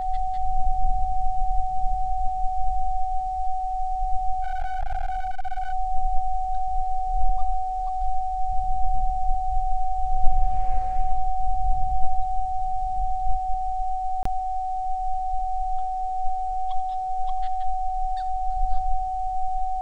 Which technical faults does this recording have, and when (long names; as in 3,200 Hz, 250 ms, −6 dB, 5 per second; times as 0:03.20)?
whistle 750 Hz −25 dBFS
0:04.42–0:05.73: clipping −21.5 dBFS
0:14.23–0:14.25: drop-out 24 ms